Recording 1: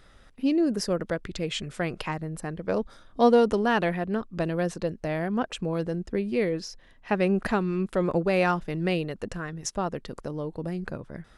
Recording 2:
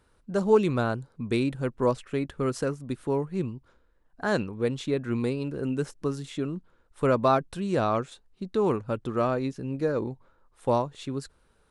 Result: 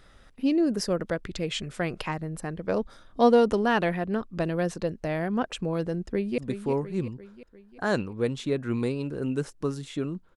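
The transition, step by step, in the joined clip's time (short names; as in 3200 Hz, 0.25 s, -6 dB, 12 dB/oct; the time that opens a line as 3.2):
recording 1
6.07–6.38 echo throw 0.35 s, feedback 55%, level -9 dB
6.38 switch to recording 2 from 2.79 s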